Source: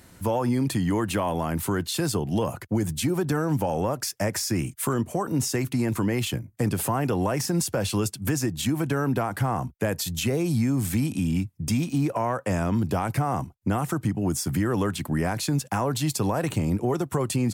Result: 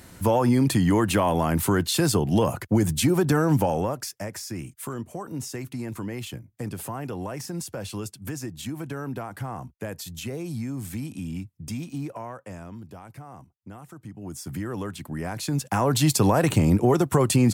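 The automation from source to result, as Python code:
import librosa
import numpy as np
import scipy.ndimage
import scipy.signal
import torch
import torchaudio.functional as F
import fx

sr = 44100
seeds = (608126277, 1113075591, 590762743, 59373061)

y = fx.gain(x, sr, db=fx.line((3.6, 4.0), (4.27, -8.0), (12.01, -8.0), (12.88, -17.5), (13.94, -17.5), (14.53, -7.0), (15.16, -7.0), (15.99, 5.5)))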